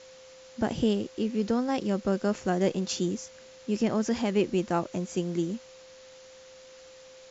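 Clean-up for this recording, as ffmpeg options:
-af "bandreject=f=520:w=30,afftdn=nr=23:nf=-51"

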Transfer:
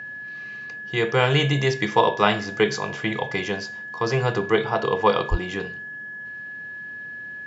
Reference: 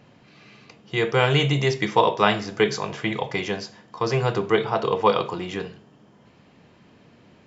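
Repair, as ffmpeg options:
-filter_complex "[0:a]bandreject=f=1700:w=30,asplit=3[s0][s1][s2];[s0]afade=t=out:st=5.3:d=0.02[s3];[s1]highpass=f=140:w=0.5412,highpass=f=140:w=1.3066,afade=t=in:st=5.3:d=0.02,afade=t=out:st=5.42:d=0.02[s4];[s2]afade=t=in:st=5.42:d=0.02[s5];[s3][s4][s5]amix=inputs=3:normalize=0"

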